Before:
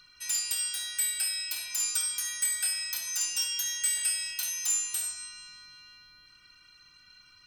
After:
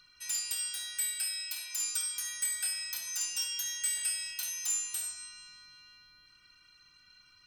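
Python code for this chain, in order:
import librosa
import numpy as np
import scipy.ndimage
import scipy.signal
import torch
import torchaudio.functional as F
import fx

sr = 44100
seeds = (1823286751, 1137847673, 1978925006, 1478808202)

y = fx.low_shelf(x, sr, hz=400.0, db=-12.0, at=(1.14, 2.16))
y = y * 10.0 ** (-4.0 / 20.0)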